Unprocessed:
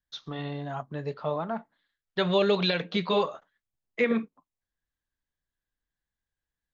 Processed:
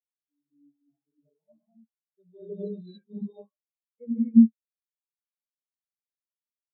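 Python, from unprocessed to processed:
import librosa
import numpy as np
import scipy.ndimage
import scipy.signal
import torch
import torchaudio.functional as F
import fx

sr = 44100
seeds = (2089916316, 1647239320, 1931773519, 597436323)

y = fx.graphic_eq_15(x, sr, hz=(100, 250, 4000), db=(-9, 8, 3))
y = fx.rev_gated(y, sr, seeds[0], gate_ms=290, shape='rising', drr_db=-5.5)
y = fx.spectral_expand(y, sr, expansion=4.0)
y = F.gain(torch.from_numpy(y), -1.5).numpy()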